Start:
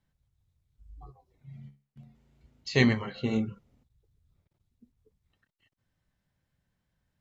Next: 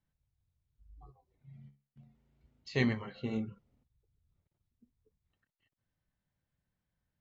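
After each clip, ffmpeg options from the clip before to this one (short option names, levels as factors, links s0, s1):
-af "lowpass=f=4000:p=1,volume=0.447"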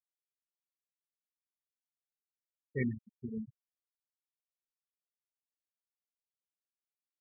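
-af "afftfilt=real='re*gte(hypot(re,im),0.0794)':imag='im*gte(hypot(re,im),0.0794)':win_size=1024:overlap=0.75,volume=0.668"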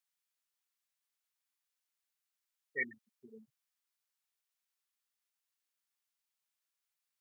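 -af "highpass=1000,volume=2.37"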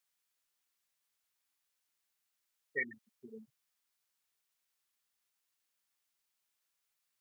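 -af "acompressor=threshold=0.0158:ratio=6,volume=1.68"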